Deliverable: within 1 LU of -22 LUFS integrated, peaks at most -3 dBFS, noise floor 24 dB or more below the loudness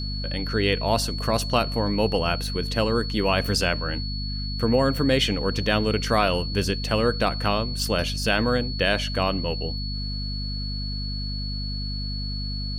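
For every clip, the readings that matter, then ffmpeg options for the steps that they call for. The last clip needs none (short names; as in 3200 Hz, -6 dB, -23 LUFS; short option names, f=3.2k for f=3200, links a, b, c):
hum 50 Hz; harmonics up to 250 Hz; hum level -28 dBFS; steady tone 4400 Hz; tone level -33 dBFS; loudness -24.5 LUFS; peak -6.0 dBFS; loudness target -22.0 LUFS
-> -af "bandreject=f=50:t=h:w=4,bandreject=f=100:t=h:w=4,bandreject=f=150:t=h:w=4,bandreject=f=200:t=h:w=4,bandreject=f=250:t=h:w=4"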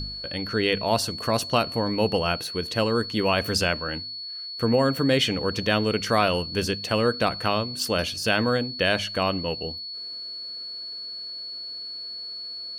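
hum none; steady tone 4400 Hz; tone level -33 dBFS
-> -af "bandreject=f=4.4k:w=30"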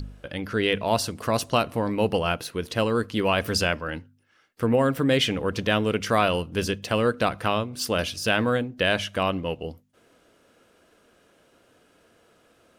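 steady tone none; loudness -25.0 LUFS; peak -7.5 dBFS; loudness target -22.0 LUFS
-> -af "volume=3dB"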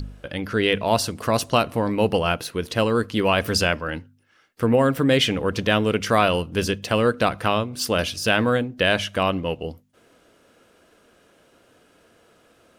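loudness -22.0 LUFS; peak -4.5 dBFS; noise floor -59 dBFS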